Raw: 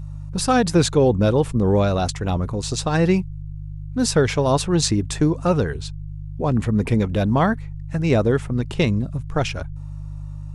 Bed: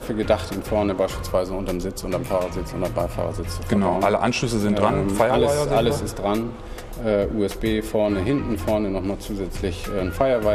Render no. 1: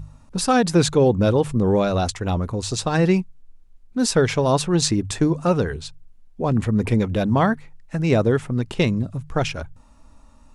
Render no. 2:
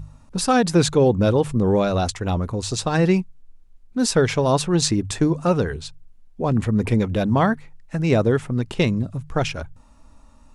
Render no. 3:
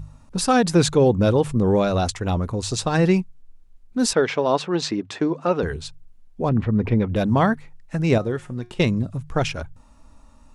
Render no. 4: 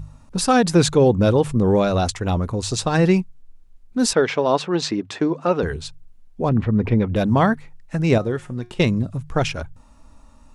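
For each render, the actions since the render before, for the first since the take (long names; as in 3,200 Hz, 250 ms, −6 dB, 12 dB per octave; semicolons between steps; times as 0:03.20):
hum removal 50 Hz, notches 3
no processing that can be heard
0:04.13–0:05.63: band-pass filter 270–3,900 Hz; 0:06.49–0:07.16: high-frequency loss of the air 270 metres; 0:08.18–0:08.80: tuned comb filter 180 Hz, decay 0.3 s
level +1.5 dB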